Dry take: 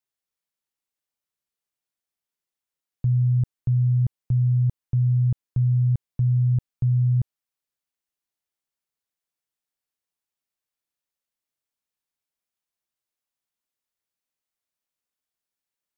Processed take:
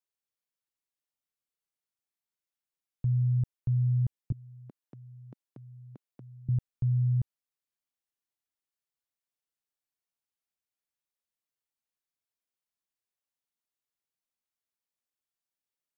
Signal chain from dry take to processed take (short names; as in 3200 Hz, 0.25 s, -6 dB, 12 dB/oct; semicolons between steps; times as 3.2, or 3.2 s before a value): 4.32–6.49 HPF 240 Hz 24 dB/oct; gain -6 dB